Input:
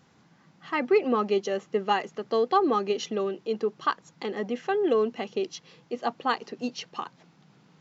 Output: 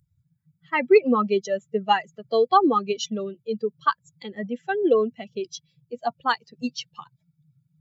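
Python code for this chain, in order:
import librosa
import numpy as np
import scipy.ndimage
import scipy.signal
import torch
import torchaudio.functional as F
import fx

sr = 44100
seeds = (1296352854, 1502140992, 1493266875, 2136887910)

y = fx.bin_expand(x, sr, power=2.0)
y = y * 10.0 ** (8.0 / 20.0)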